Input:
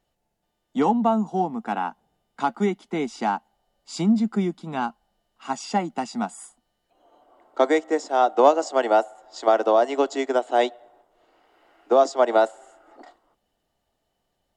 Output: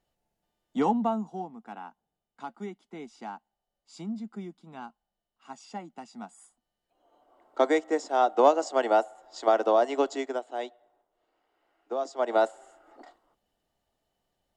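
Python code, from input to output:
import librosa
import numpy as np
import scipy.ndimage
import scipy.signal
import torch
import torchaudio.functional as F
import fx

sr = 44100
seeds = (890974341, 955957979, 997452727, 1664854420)

y = fx.gain(x, sr, db=fx.line((0.95, -4.5), (1.56, -15.5), (6.1, -15.5), (7.6, -4.0), (10.1, -4.0), (10.53, -14.0), (12.0, -14.0), (12.43, -4.0)))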